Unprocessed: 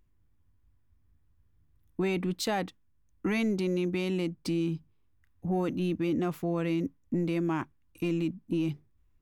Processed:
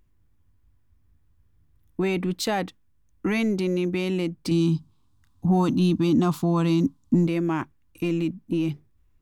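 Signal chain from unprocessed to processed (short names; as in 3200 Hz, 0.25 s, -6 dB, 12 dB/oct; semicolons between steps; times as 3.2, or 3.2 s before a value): 4.51–7.27 graphic EQ 125/250/500/1000/2000/4000/8000 Hz +6/+7/-8/+12/-10/+10/+7 dB; gain +4.5 dB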